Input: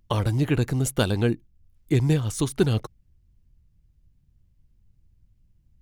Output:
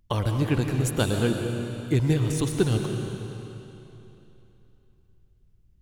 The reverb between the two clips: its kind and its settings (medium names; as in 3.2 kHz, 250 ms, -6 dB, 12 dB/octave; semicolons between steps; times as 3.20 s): algorithmic reverb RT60 3.1 s, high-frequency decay 0.95×, pre-delay 85 ms, DRR 3.5 dB; trim -2 dB